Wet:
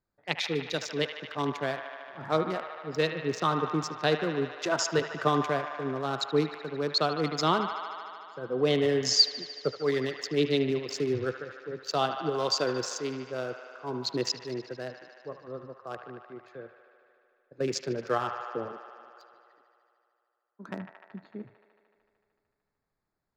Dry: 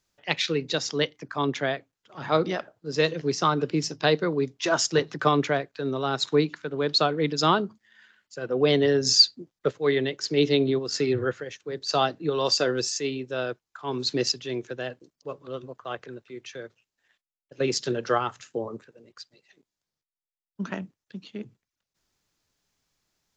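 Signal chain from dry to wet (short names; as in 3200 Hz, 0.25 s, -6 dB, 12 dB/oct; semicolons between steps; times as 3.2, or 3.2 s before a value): Wiener smoothing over 15 samples; 18.72–20.69 Bessel high-pass 460 Hz, order 2; band-limited delay 75 ms, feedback 82%, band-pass 1500 Hz, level -7 dB; gain -4 dB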